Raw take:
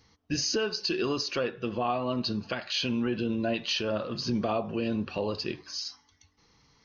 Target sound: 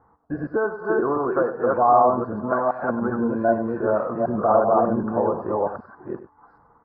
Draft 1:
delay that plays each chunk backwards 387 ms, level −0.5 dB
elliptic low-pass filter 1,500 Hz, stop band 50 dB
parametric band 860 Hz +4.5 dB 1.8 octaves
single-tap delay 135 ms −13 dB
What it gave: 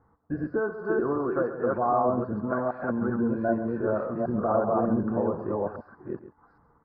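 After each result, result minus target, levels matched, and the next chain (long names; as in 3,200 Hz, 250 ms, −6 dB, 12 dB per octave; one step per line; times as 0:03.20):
echo 37 ms late; 1,000 Hz band −3.0 dB
delay that plays each chunk backwards 387 ms, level −0.5 dB
elliptic low-pass filter 1,500 Hz, stop band 50 dB
parametric band 860 Hz +4.5 dB 1.8 octaves
single-tap delay 98 ms −13 dB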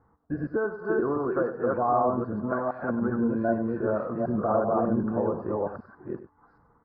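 1,000 Hz band −3.0 dB
delay that plays each chunk backwards 387 ms, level −0.5 dB
elliptic low-pass filter 1,500 Hz, stop band 50 dB
parametric band 860 Hz +14 dB 1.8 octaves
single-tap delay 98 ms −13 dB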